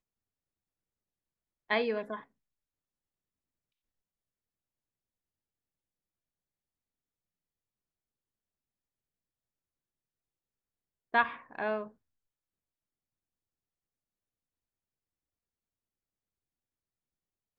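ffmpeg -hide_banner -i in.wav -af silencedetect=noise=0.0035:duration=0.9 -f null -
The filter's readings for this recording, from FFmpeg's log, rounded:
silence_start: 0.00
silence_end: 1.70 | silence_duration: 1.70
silence_start: 2.23
silence_end: 11.14 | silence_duration: 8.91
silence_start: 11.90
silence_end: 17.58 | silence_duration: 5.69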